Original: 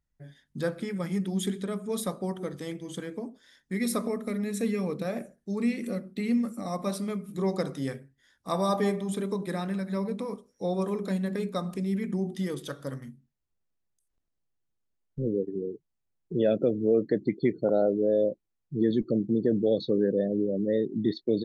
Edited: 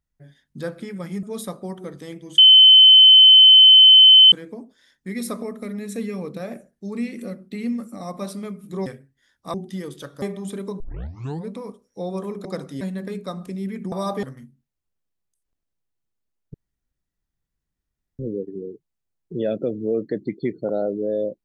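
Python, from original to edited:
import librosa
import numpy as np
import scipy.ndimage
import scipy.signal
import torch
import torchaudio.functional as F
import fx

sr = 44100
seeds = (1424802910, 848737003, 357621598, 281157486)

y = fx.edit(x, sr, fx.cut(start_s=1.23, length_s=0.59),
    fx.insert_tone(at_s=2.97, length_s=1.94, hz=3060.0, db=-6.0),
    fx.move(start_s=7.51, length_s=0.36, to_s=11.09),
    fx.swap(start_s=8.55, length_s=0.31, other_s=12.2, other_length_s=0.68),
    fx.tape_start(start_s=9.44, length_s=0.68),
    fx.insert_room_tone(at_s=15.19, length_s=1.65), tone=tone)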